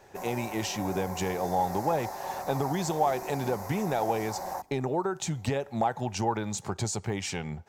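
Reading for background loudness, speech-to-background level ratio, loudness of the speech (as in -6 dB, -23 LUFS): -38.0 LUFS, 7.0 dB, -31.0 LUFS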